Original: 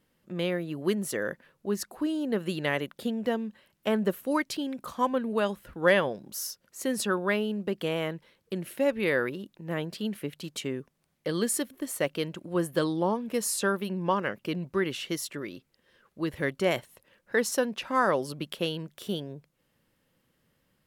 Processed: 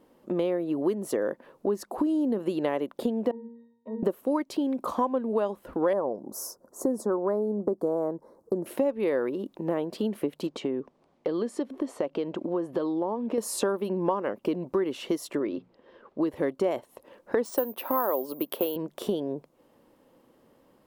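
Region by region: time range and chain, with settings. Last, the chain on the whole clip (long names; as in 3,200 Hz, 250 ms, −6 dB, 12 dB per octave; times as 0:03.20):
0:01.98–0:02.39: bass and treble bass +9 dB, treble +6 dB + downward compressor 2.5 to 1, threshold −27 dBFS
0:03.31–0:04.03: treble cut that deepens with the level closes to 1,000 Hz, closed at −24.5 dBFS + resonances in every octave A#, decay 0.52 s
0:05.93–0:08.66: Butterworth band-reject 2,800 Hz, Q 0.54 + high-shelf EQ 9,600 Hz −5 dB
0:10.47–0:13.38: downward compressor 2 to 1, threshold −40 dBFS + low-pass filter 5,000 Hz
0:15.39–0:16.21: low-pass filter 3,700 Hz + mains-hum notches 60/120/180/240 Hz
0:17.45–0:18.76: band-pass filter 260–5,800 Hz + bad sample-rate conversion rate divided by 3×, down none, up zero stuff
whole clip: flat-topped bell 510 Hz +13.5 dB 2.6 octaves; downward compressor 4 to 1, threshold −28 dBFS; level +2 dB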